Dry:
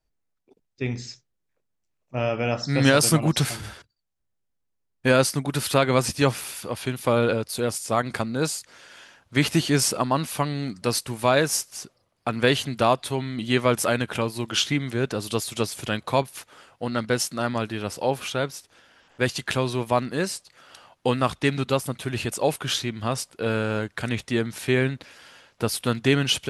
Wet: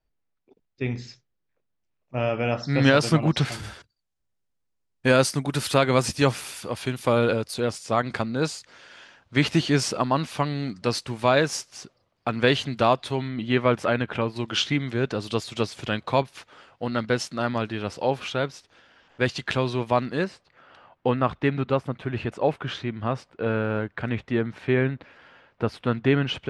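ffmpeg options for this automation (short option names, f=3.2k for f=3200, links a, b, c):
-af "asetnsamples=n=441:p=0,asendcmd='3.52 lowpass f 9000;7.54 lowpass f 5300;13.28 lowpass f 2800;14.36 lowpass f 4700;20.24 lowpass f 2100',lowpass=4k"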